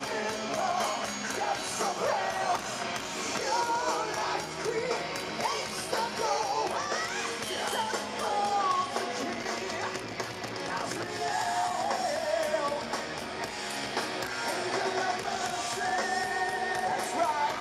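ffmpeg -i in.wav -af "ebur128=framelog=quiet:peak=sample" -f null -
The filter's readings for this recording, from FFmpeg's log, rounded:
Integrated loudness:
  I:         -30.8 LUFS
  Threshold: -40.8 LUFS
Loudness range:
  LRA:         1.7 LU
  Threshold: -50.9 LUFS
  LRA low:   -31.7 LUFS
  LRA high:  -30.0 LUFS
Sample peak:
  Peak:      -15.3 dBFS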